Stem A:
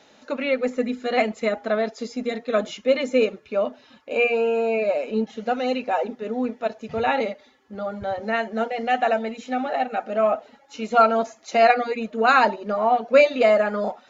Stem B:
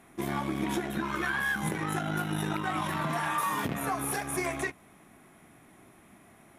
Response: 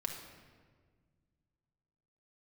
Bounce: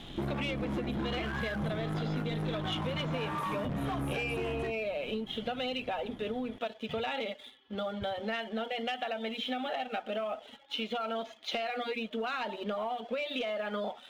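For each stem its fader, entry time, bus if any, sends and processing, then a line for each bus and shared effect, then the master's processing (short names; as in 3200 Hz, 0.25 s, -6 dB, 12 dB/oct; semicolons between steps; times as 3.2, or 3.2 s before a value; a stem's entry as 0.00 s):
-5.5 dB, 0.00 s, no send, limiter -11 dBFS, peak gain reduction 7.5 dB; compressor, threshold -22 dBFS, peak gain reduction 7 dB; synth low-pass 3300 Hz, resonance Q 11
-1.0 dB, 0.00 s, no send, tilt -4 dB/oct; hard clip -26 dBFS, distortion -8 dB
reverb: off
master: sample leveller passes 1; compressor 6:1, threshold -32 dBFS, peak gain reduction 11 dB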